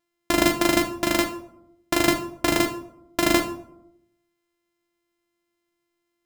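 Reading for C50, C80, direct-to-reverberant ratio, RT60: 10.5 dB, 14.5 dB, 4.5 dB, 0.75 s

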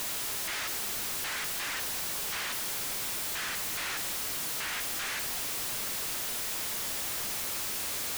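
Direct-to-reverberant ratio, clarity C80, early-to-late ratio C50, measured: 10.0 dB, 15.0 dB, 13.5 dB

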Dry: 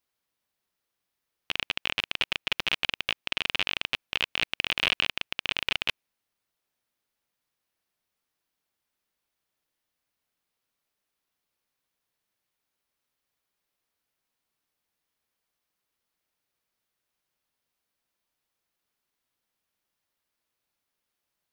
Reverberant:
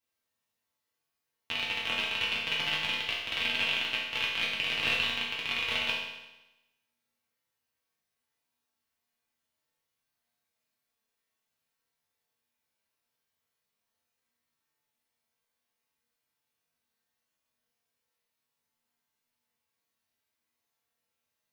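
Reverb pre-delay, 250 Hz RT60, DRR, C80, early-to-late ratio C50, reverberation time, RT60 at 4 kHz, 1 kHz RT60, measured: 4 ms, 1.0 s, −6.5 dB, 4.0 dB, 1.5 dB, 1.0 s, 0.95 s, 1.0 s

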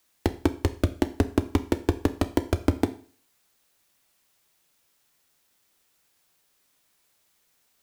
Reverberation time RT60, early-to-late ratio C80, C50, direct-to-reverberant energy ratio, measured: 0.45 s, 19.5 dB, 16.0 dB, 10.0 dB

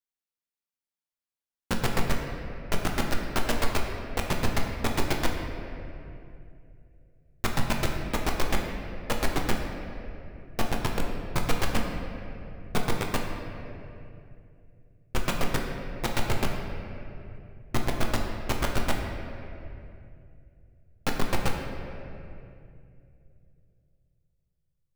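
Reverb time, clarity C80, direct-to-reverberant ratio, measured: 2.7 s, 4.5 dB, 0.5 dB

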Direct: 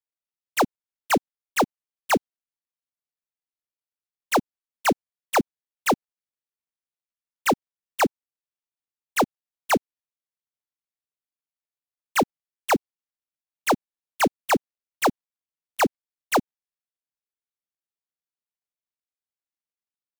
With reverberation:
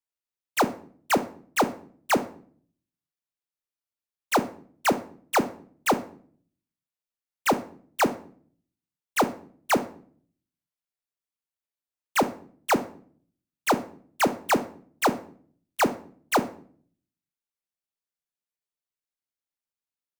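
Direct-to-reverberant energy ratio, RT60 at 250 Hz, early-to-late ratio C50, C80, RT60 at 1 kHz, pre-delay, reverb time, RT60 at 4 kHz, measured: 11.0 dB, 0.75 s, 15.0 dB, 20.0 dB, 0.45 s, 20 ms, 0.50 s, 0.40 s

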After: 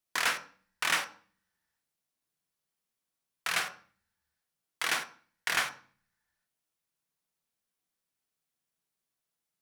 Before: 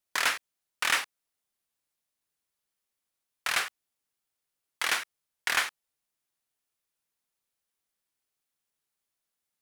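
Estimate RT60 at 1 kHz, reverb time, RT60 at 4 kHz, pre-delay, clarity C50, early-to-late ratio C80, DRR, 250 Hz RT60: 0.40 s, 0.45 s, 0.40 s, 3 ms, 12.5 dB, 16.5 dB, 6.0 dB, 0.80 s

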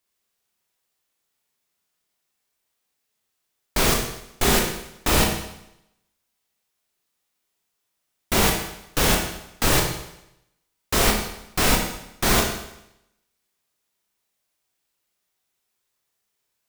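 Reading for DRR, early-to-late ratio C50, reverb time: 0.5 dB, 4.5 dB, 0.85 s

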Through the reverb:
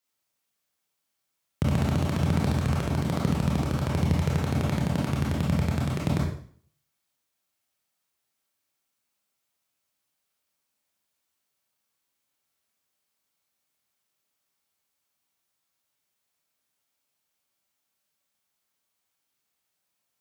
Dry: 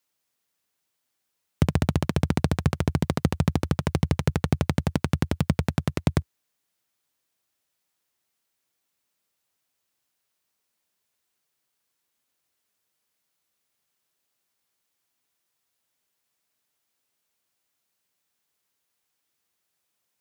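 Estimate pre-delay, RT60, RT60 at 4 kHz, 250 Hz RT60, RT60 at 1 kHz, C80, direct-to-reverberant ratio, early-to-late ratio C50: 24 ms, 0.50 s, 0.50 s, 0.55 s, 0.50 s, 6.5 dB, −4.0 dB, 2.0 dB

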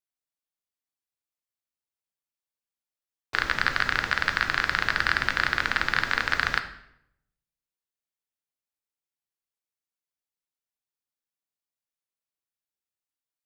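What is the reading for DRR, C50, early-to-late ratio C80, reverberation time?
7.0 dB, 11.5 dB, 14.0 dB, 0.75 s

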